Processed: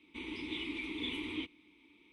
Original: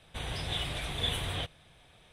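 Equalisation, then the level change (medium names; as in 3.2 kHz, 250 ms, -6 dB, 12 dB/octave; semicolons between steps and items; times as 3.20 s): vowel filter u; static phaser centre 320 Hz, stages 4; +14.0 dB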